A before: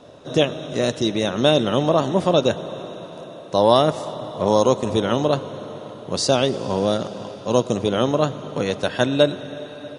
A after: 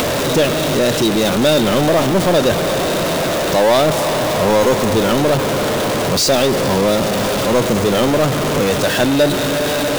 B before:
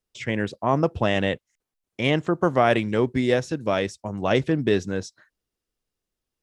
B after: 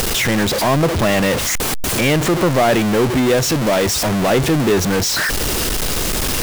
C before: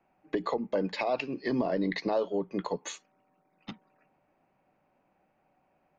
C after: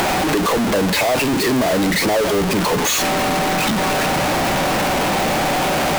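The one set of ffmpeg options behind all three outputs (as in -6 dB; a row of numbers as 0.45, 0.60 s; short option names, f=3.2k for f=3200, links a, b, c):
-filter_complex "[0:a]aeval=exprs='val(0)+0.5*0.158*sgn(val(0))':c=same,asplit=2[a][b];[b]acompressor=mode=upward:threshold=-17dB:ratio=2.5,volume=1dB[c];[a][c]amix=inputs=2:normalize=0,asoftclip=type=tanh:threshold=-2dB,volume=-4dB"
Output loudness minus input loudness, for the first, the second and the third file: +5.5, +7.5, +14.5 LU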